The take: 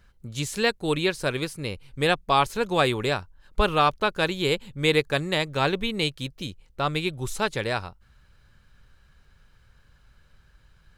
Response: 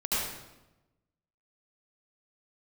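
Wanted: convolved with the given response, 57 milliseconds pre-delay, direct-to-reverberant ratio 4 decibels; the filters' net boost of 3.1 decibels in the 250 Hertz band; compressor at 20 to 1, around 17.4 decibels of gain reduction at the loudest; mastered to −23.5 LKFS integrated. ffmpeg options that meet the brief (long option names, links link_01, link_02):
-filter_complex "[0:a]equalizer=frequency=250:width_type=o:gain=4.5,acompressor=threshold=-32dB:ratio=20,asplit=2[link_01][link_02];[1:a]atrim=start_sample=2205,adelay=57[link_03];[link_02][link_03]afir=irnorm=-1:irlink=0,volume=-13dB[link_04];[link_01][link_04]amix=inputs=2:normalize=0,volume=13dB"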